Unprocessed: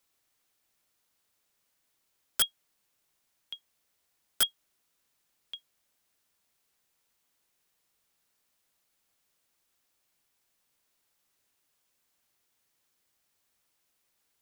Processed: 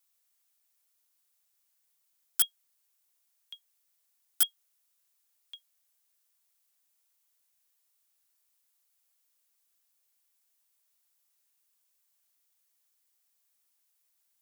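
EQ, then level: HPF 540 Hz 12 dB/oct; high shelf 5700 Hz +12 dB; -8.0 dB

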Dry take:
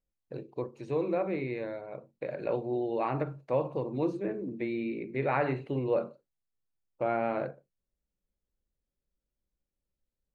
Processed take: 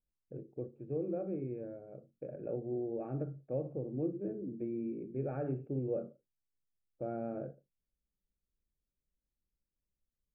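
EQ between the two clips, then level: running mean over 44 samples; air absorption 420 m; -2.5 dB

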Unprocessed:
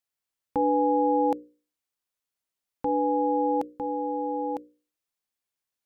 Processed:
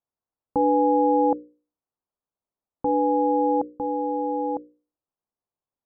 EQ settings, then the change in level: LPF 1100 Hz 24 dB/oct; +3.5 dB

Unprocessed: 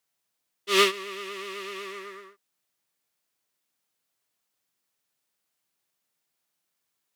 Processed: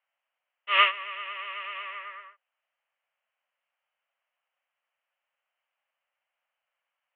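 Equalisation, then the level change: Chebyshev band-pass 530–3000 Hz, order 5; +3.5 dB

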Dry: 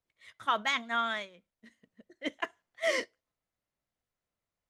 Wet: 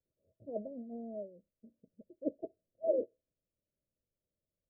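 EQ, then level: Chebyshev low-pass 640 Hz, order 8; dynamic EQ 460 Hz, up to +4 dB, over -51 dBFS, Q 2.2; +1.0 dB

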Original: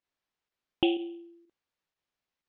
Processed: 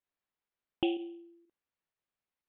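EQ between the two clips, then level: LPF 3200 Hz 12 dB/oct; -4.5 dB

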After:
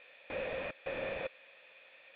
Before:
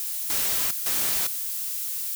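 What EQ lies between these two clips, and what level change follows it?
vocal tract filter e; bell 400 Hz -5 dB 0.66 oct; bell 1900 Hz -13.5 dB 0.35 oct; +15.0 dB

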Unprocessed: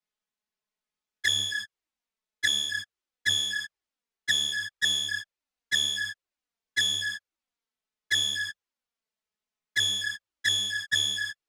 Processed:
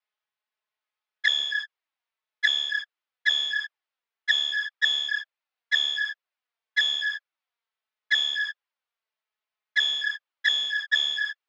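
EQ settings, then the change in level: BPF 720–4900 Hz; air absorption 130 m; +5.5 dB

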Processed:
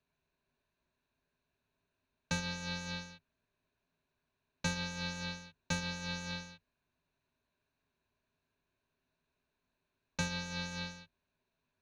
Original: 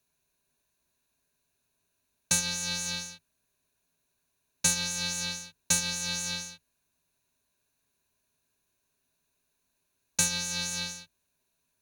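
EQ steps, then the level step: dynamic EQ 2900 Hz, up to -3 dB, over -43 dBFS, Q 0.86; air absorption 250 m; 0.0 dB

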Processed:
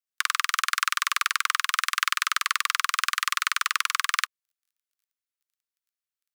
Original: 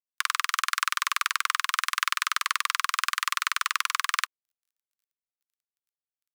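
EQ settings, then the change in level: steep high-pass 1100 Hz 48 dB/oct; +2.0 dB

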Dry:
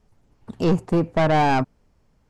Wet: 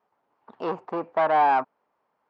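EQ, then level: BPF 380–4500 Hz; air absorption 110 m; bell 1000 Hz +12.5 dB 1.6 oct; -9.0 dB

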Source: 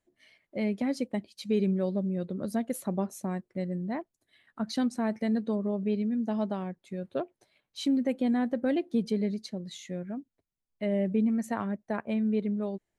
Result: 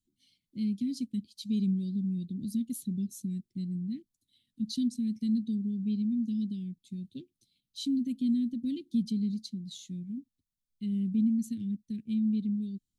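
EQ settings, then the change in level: elliptic band-stop 250–3500 Hz, stop band 60 dB; 0.0 dB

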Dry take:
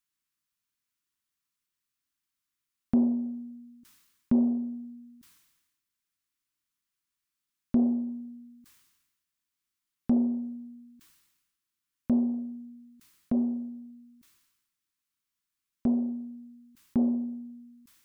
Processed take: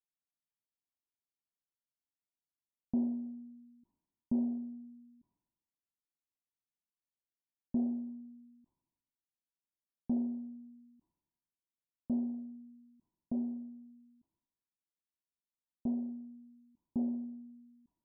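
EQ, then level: rippled Chebyshev low-pass 1000 Hz, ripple 3 dB; -8.5 dB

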